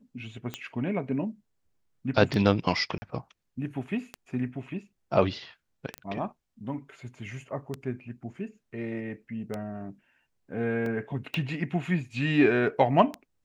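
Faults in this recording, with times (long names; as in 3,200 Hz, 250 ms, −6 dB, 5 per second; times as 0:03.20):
scratch tick 33 1/3 rpm −18 dBFS
0:02.98–0:03.02: drop-out 40 ms
0:05.98: click −22 dBFS
0:10.86: drop-out 2.2 ms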